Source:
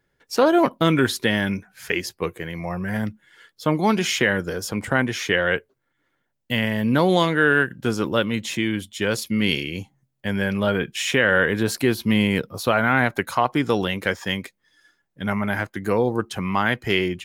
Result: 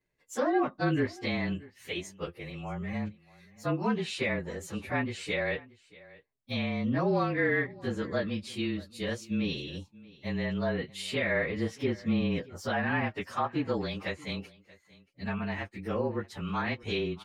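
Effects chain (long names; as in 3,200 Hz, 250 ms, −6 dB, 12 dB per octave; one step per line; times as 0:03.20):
partials spread apart or drawn together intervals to 109%
treble cut that deepens with the level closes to 2,500 Hz, closed at −17 dBFS
single-tap delay 630 ms −22 dB
level −7.5 dB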